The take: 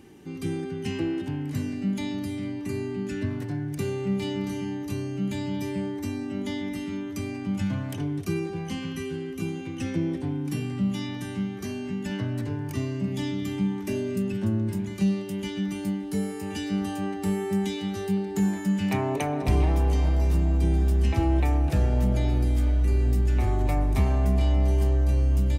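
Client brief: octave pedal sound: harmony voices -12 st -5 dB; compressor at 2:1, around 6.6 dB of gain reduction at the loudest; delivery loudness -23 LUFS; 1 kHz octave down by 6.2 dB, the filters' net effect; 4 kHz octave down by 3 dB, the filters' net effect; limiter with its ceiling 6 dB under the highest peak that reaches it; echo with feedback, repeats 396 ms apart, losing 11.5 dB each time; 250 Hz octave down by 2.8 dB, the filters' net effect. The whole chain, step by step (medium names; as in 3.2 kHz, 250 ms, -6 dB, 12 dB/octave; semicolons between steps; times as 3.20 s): peaking EQ 250 Hz -3.5 dB; peaking EQ 1 kHz -8.5 dB; peaking EQ 4 kHz -3.5 dB; compression 2:1, threshold -31 dBFS; peak limiter -25 dBFS; feedback delay 396 ms, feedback 27%, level -11.5 dB; harmony voices -12 st -5 dB; trim +10.5 dB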